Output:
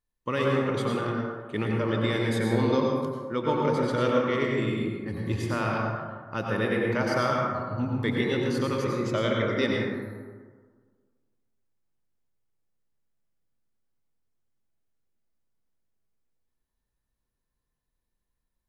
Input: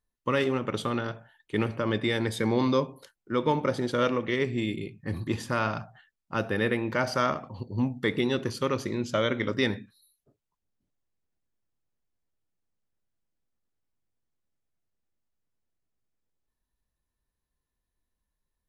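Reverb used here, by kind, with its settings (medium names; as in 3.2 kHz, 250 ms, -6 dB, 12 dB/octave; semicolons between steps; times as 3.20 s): plate-style reverb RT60 1.6 s, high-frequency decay 0.35×, pre-delay 80 ms, DRR -1.5 dB; trim -3 dB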